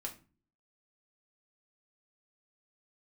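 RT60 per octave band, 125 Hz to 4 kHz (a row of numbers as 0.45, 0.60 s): 0.65, 0.60, 0.35, 0.35, 0.30, 0.25 s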